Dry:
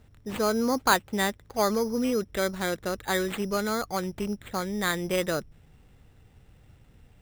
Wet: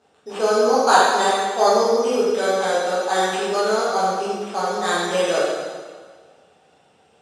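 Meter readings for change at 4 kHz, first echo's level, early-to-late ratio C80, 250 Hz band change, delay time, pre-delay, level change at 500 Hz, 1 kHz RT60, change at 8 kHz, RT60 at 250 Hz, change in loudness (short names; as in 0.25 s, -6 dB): +7.5 dB, none, 0.0 dB, 0.0 dB, none, 5 ms, +10.5 dB, 1.6 s, +6.5 dB, 1.5 s, +8.5 dB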